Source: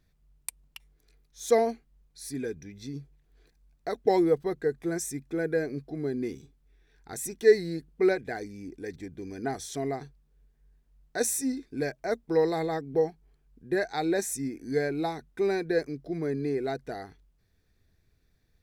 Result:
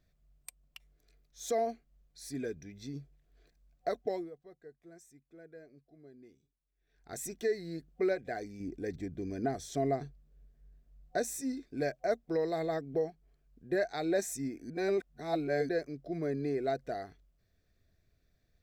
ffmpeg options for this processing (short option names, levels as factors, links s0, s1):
-filter_complex "[0:a]asettb=1/sr,asplit=3[s0][s1][s2];[s0]atrim=end=8.604[s3];[s1]atrim=start=8.6:end=11.41,asetpts=PTS-STARTPTS,afade=t=in:d=0.004:c=qsin,afade=t=out:st=2.806:d=0.004:c=qsin,lowshelf=f=470:g=7[s4];[s2]atrim=start=11.406[s5];[s3][s4]acrossfade=d=0.004:c1=hsin:c2=qsin[s6];[s6][s5]acrossfade=d=0.004:c1=qsin:c2=hsin,asplit=5[s7][s8][s9][s10][s11];[s7]atrim=end=4.31,asetpts=PTS-STARTPTS,afade=t=out:st=3.89:d=0.42:silence=0.0944061[s12];[s8]atrim=start=4.31:end=6.75,asetpts=PTS-STARTPTS,volume=0.0944[s13];[s9]atrim=start=6.75:end=14.702,asetpts=PTS-STARTPTS,afade=t=in:d=0.42:silence=0.0944061[s14];[s10]atrim=start=14.698:end=15.692,asetpts=PTS-STARTPTS,areverse[s15];[s11]atrim=start=15.688[s16];[s12][s13][s14]concat=n=3:v=0:a=1[s17];[s17][s15]acrossfade=d=0.004:c1=hsin:c2=hsin[s18];[s18][s16]acrossfade=d=0.004:c1=hsin:c2=hsin,alimiter=limit=0.119:level=0:latency=1:release=414,superequalizer=8b=2:9b=0.631:16b=0.562,volume=0.631"